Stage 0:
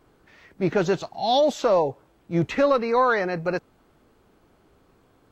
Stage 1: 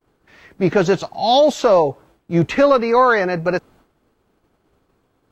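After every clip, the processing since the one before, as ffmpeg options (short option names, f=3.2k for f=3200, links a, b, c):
-af "agate=range=-33dB:threshold=-51dB:ratio=3:detection=peak,volume=6.5dB"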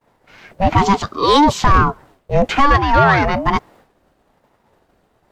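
-af "acontrast=79,aeval=exprs='val(0)*sin(2*PI*440*n/s+440*0.35/1.1*sin(2*PI*1.1*n/s))':c=same"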